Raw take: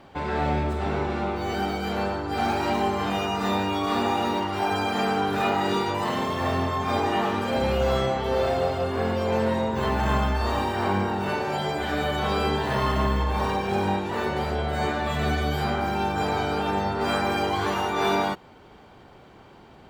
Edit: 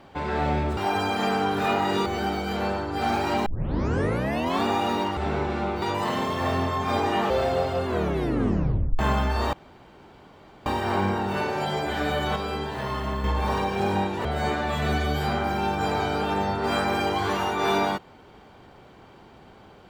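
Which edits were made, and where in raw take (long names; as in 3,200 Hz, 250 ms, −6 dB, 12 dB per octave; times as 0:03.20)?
0:00.77–0:01.42: swap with 0:04.53–0:05.82
0:02.82: tape start 1.18 s
0:07.30–0:08.35: remove
0:08.91: tape stop 1.13 s
0:10.58: splice in room tone 1.13 s
0:12.28–0:13.16: clip gain −5.5 dB
0:14.17–0:14.62: remove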